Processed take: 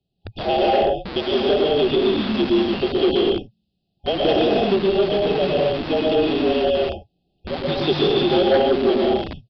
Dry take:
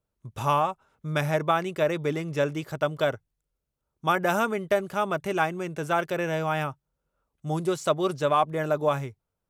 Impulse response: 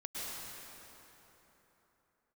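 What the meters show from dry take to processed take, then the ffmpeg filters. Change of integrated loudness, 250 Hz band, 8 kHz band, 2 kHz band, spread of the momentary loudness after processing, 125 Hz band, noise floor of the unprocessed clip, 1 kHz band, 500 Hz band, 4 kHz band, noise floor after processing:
+7.5 dB, +11.0 dB, under -10 dB, +0.5 dB, 8 LU, +1.0 dB, -83 dBFS, +2.0 dB, +9.5 dB, +14.5 dB, -73 dBFS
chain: -filter_complex "[0:a]afreqshift=-220[s0];[1:a]atrim=start_sample=2205,afade=t=out:st=0.37:d=0.01,atrim=end_sample=16758[s1];[s0][s1]afir=irnorm=-1:irlink=0,afftfilt=real='re*(1-between(b*sr/4096,820,2500))':imag='im*(1-between(b*sr/4096,820,2500))':win_size=4096:overlap=0.75,acrossover=split=180|1800[s2][s3][s4];[s2]aeval=exprs='(mod(79.4*val(0)+1,2)-1)/79.4':c=same[s5];[s5][s3][s4]amix=inputs=3:normalize=0,lowpass=f=4200:t=q:w=1.9,aresample=11025,aeval=exprs='0.188*sin(PI/2*1.58*val(0)/0.188)':c=same,aresample=44100,volume=1.5"

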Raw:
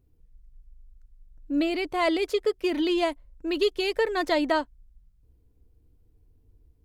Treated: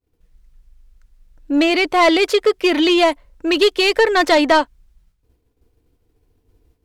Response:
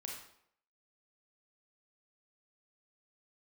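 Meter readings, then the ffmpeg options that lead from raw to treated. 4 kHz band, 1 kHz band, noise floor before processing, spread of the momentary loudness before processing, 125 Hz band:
+13.5 dB, +12.5 dB, -63 dBFS, 6 LU, no reading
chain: -filter_complex "[0:a]asplit=2[s0][s1];[s1]highpass=f=720:p=1,volume=5.62,asoftclip=type=tanh:threshold=0.251[s2];[s0][s2]amix=inputs=2:normalize=0,lowpass=f=5700:p=1,volume=0.501,agate=range=0.0224:threshold=0.00126:ratio=3:detection=peak,volume=2.37"

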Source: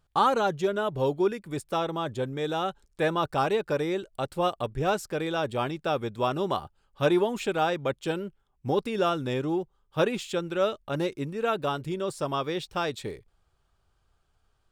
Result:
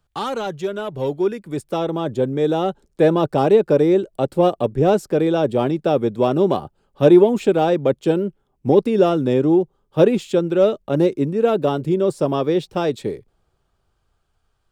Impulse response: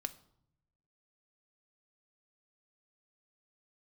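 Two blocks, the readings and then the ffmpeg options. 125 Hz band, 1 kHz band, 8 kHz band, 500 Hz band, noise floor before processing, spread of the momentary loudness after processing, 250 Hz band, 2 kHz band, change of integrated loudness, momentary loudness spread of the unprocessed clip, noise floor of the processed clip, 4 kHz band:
+10.0 dB, +3.5 dB, no reading, +11.0 dB, -71 dBFS, 10 LU, +12.5 dB, +0.5 dB, +10.0 dB, 7 LU, -69 dBFS, +1.5 dB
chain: -filter_complex "[0:a]acrossover=split=140|640|1800[s0][s1][s2][s3];[s1]dynaudnorm=f=210:g=17:m=4.73[s4];[s2]asoftclip=type=tanh:threshold=0.0266[s5];[s0][s4][s5][s3]amix=inputs=4:normalize=0,volume=1.19"

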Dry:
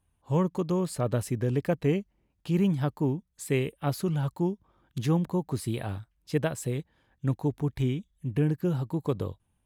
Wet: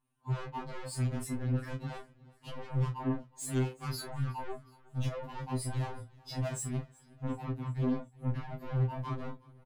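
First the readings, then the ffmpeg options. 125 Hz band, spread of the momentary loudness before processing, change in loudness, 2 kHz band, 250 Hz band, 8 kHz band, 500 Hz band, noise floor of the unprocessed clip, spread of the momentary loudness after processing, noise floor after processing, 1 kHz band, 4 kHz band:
-5.0 dB, 7 LU, -7.0 dB, -6.0 dB, -9.0 dB, -1.0 dB, -11.5 dB, -74 dBFS, 10 LU, -62 dBFS, -3.5 dB, -3.5 dB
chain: -filter_complex "[0:a]equalizer=f=250:t=o:w=1:g=8,equalizer=f=500:t=o:w=1:g=-7,equalizer=f=1000:t=o:w=1:g=6,afftdn=nr=15:nf=-40,adynamicequalizer=threshold=0.00126:dfrequency=8600:dqfactor=1.2:tfrequency=8600:tqfactor=1.2:attack=5:release=100:ratio=0.375:range=2:mode=cutabove:tftype=bell,asplit=2[s0][s1];[s1]acompressor=threshold=0.0158:ratio=4,volume=1.12[s2];[s0][s2]amix=inputs=2:normalize=0,alimiter=limit=0.0891:level=0:latency=1:release=57,asoftclip=type=tanh:threshold=0.0133,flanger=delay=19.5:depth=4.6:speed=1.5,asplit=2[s3][s4];[s4]adelay=33,volume=0.237[s5];[s3][s5]amix=inputs=2:normalize=0,aecho=1:1:369|738|1107|1476:0.0631|0.0353|0.0198|0.0111,afftfilt=real='re*2.45*eq(mod(b,6),0)':imag='im*2.45*eq(mod(b,6),0)':win_size=2048:overlap=0.75,volume=2.66"

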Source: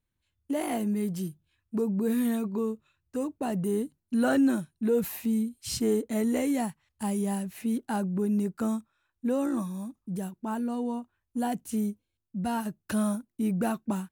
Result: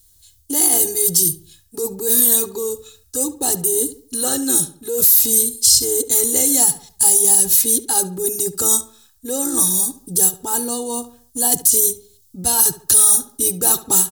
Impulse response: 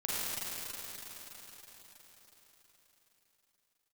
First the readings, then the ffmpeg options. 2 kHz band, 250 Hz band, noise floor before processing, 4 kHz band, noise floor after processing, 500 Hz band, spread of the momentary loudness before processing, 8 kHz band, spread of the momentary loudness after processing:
+3.0 dB, -2.0 dB, -82 dBFS, +20.5 dB, -55 dBFS, +6.5 dB, 9 LU, +30.5 dB, 12 LU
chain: -filter_complex "[0:a]lowshelf=f=160:g=8.5,aecho=1:1:2.4:0.98,areverse,acompressor=threshold=0.02:ratio=4,areverse,aexciter=amount=14.5:drive=4.8:freq=3700,asplit=2[s0][s1];[s1]adelay=71,lowpass=f=2600:p=1,volume=0.2,asplit=2[s2][s3];[s3]adelay=71,lowpass=f=2600:p=1,volume=0.41,asplit=2[s4][s5];[s5]adelay=71,lowpass=f=2600:p=1,volume=0.41,asplit=2[s6][s7];[s7]adelay=71,lowpass=f=2600:p=1,volume=0.41[s8];[s2][s4][s6][s8]amix=inputs=4:normalize=0[s9];[s0][s9]amix=inputs=2:normalize=0,alimiter=level_in=3.55:limit=0.891:release=50:level=0:latency=1,volume=0.891"

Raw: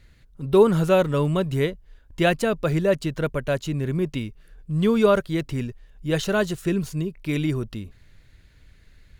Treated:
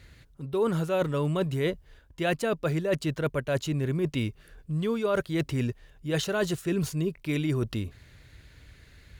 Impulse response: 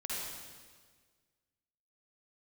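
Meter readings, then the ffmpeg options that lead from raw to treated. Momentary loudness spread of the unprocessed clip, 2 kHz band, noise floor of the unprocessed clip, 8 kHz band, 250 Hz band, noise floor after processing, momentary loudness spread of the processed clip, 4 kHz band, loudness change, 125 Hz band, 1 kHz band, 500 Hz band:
13 LU, -5.0 dB, -54 dBFS, -2.0 dB, -5.5 dB, -57 dBFS, 6 LU, -3.5 dB, -6.0 dB, -4.0 dB, -7.0 dB, -7.0 dB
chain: -af "highpass=54,equalizer=f=200:t=o:w=0.41:g=-4.5,areverse,acompressor=threshold=0.0355:ratio=6,areverse,volume=1.68"

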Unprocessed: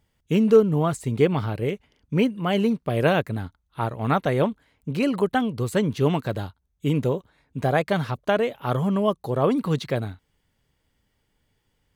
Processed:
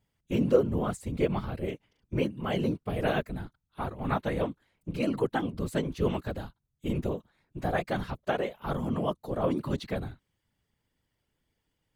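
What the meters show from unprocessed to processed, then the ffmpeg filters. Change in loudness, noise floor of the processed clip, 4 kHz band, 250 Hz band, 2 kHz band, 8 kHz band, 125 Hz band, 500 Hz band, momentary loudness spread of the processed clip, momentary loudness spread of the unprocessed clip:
-7.5 dB, -81 dBFS, -7.5 dB, -7.5 dB, -7.5 dB, -7.5 dB, -8.0 dB, -7.5 dB, 10 LU, 10 LU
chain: -af "afftfilt=real='hypot(re,im)*cos(2*PI*random(0))':imag='hypot(re,im)*sin(2*PI*random(1))':win_size=512:overlap=0.75,volume=0.841"

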